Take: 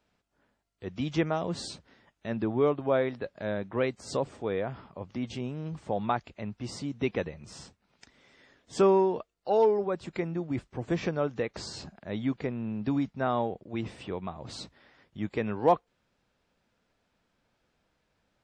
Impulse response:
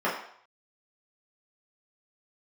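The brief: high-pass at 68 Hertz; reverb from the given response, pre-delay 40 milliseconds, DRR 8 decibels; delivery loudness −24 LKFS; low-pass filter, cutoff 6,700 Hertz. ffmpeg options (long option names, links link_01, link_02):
-filter_complex "[0:a]highpass=68,lowpass=6700,asplit=2[link_01][link_02];[1:a]atrim=start_sample=2205,adelay=40[link_03];[link_02][link_03]afir=irnorm=-1:irlink=0,volume=-21.5dB[link_04];[link_01][link_04]amix=inputs=2:normalize=0,volume=6dB"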